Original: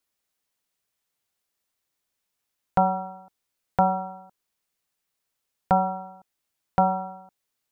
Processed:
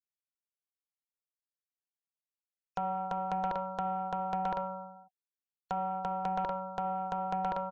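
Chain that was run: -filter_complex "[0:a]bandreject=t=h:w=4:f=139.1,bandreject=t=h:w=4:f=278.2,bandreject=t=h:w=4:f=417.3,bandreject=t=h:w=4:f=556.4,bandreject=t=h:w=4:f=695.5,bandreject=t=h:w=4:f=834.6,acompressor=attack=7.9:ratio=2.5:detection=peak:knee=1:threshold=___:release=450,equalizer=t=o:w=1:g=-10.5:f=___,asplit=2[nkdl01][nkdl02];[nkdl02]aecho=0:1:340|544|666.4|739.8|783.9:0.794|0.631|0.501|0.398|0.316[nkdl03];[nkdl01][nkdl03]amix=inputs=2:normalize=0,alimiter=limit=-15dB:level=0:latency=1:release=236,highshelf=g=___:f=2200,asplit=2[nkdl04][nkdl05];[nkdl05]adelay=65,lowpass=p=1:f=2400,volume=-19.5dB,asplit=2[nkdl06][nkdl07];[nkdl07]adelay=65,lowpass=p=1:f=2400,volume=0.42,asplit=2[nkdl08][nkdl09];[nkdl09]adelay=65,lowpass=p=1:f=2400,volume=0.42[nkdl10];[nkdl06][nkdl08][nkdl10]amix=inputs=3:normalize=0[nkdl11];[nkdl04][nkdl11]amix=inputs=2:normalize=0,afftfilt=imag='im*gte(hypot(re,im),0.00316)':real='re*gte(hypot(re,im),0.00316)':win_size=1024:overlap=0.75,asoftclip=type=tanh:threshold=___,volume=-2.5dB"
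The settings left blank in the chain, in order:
-25dB, 94, 10.5, -20dB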